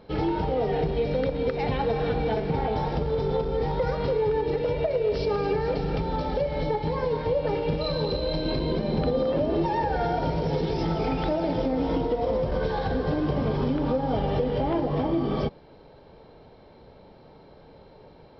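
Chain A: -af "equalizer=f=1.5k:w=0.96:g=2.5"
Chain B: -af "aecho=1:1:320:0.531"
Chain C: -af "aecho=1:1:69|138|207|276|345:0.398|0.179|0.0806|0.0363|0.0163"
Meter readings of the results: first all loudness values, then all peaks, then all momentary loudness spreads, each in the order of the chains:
-26.0, -25.5, -25.5 LUFS; -14.0, -12.5, -13.5 dBFS; 2, 2, 2 LU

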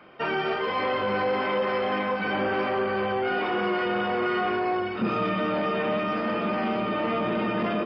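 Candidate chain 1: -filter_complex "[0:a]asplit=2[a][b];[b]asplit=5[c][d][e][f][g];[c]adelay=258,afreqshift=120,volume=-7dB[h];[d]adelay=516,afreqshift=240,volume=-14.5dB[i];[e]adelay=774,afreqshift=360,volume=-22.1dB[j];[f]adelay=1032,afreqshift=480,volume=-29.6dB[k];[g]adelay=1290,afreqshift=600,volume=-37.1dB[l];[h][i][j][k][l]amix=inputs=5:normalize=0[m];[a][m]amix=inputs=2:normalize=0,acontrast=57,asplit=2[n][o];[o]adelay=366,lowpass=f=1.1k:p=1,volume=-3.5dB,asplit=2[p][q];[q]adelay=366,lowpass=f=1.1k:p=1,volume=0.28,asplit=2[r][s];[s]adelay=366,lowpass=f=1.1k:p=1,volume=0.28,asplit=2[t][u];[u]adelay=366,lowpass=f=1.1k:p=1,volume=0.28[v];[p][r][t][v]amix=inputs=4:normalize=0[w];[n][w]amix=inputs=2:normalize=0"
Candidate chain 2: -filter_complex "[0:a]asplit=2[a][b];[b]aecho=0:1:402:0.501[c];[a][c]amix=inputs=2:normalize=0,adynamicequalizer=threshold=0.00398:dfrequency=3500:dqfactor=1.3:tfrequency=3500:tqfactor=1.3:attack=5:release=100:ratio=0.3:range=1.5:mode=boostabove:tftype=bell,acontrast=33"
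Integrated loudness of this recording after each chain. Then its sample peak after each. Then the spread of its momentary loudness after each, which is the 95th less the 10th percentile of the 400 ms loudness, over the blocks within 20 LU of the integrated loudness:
-18.5, -20.0 LUFS; -6.5, -9.0 dBFS; 2, 2 LU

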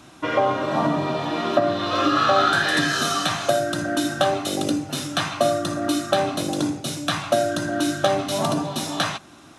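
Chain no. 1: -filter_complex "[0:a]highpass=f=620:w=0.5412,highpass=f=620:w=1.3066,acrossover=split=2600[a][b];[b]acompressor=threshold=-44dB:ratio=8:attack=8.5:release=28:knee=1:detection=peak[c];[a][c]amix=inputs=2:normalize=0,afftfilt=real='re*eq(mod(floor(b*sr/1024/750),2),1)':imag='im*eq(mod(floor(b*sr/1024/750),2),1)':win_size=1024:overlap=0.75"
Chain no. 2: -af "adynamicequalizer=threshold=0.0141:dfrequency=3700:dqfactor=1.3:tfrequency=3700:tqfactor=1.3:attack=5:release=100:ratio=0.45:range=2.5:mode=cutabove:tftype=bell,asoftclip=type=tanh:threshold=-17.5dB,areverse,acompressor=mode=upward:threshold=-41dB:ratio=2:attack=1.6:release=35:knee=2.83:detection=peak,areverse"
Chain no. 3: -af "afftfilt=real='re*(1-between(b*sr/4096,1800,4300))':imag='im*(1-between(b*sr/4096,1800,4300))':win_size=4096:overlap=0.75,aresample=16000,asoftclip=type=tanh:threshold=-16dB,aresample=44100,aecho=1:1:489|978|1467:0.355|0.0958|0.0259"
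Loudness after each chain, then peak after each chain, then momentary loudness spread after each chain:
-28.5, -25.0, -24.5 LUFS; -10.0, -17.5, -13.5 dBFS; 15, 5, 6 LU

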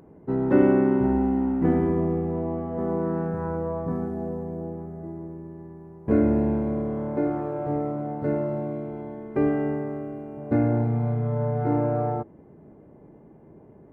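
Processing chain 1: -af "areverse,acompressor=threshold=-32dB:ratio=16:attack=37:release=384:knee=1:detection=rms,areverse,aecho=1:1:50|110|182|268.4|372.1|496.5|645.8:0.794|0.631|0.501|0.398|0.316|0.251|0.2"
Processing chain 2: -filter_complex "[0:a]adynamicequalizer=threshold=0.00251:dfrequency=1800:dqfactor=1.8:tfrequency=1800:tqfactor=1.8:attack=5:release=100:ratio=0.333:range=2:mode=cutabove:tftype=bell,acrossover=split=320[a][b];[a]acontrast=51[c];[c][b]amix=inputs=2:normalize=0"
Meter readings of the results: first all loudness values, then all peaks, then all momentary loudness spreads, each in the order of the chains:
-32.5, -21.5 LUFS; -20.0, -3.0 dBFS; 10, 15 LU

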